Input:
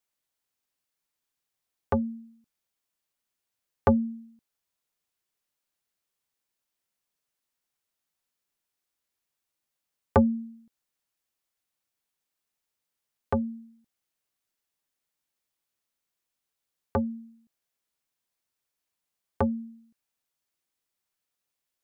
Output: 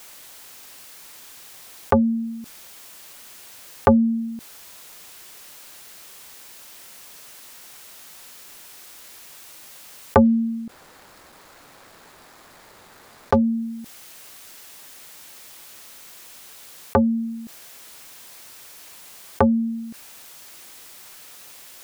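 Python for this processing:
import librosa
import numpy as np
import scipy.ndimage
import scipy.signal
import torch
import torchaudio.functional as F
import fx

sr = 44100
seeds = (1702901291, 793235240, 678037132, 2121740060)

y = fx.median_filter(x, sr, points=15, at=(10.25, 13.36))
y = fx.low_shelf(y, sr, hz=250.0, db=-6.0)
y = fx.env_flatten(y, sr, amount_pct=50)
y = y * librosa.db_to_amplitude(7.0)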